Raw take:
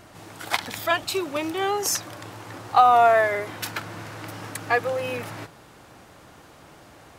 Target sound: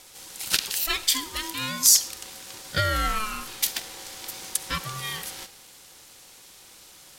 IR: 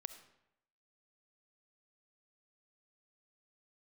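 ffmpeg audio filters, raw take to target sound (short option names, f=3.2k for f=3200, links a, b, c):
-filter_complex "[0:a]aexciter=amount=6.8:drive=5.4:freq=2.6k,aeval=exprs='val(0)*sin(2*PI*650*n/s)':c=same,asplit=2[a][b];[1:a]atrim=start_sample=2205[c];[b][c]afir=irnorm=-1:irlink=0,volume=5dB[d];[a][d]amix=inputs=2:normalize=0,volume=-13dB"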